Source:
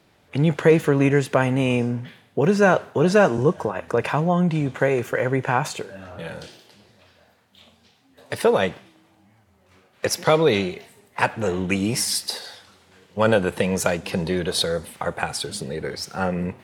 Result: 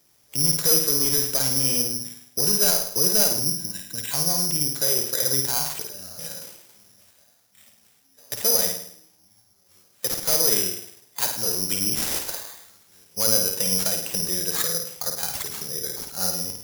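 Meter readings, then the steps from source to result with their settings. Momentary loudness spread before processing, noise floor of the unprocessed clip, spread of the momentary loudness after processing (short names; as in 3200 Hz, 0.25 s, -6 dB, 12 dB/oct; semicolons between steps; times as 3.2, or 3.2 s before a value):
14 LU, -59 dBFS, 15 LU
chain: spectral gain 3.4–4.11, 340–1500 Hz -18 dB; high shelf 11000 Hz -6 dB; hard clip -13.5 dBFS, distortion -12 dB; flutter echo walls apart 9.1 m, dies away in 0.61 s; careless resampling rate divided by 8×, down none, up zero stuff; gain -11.5 dB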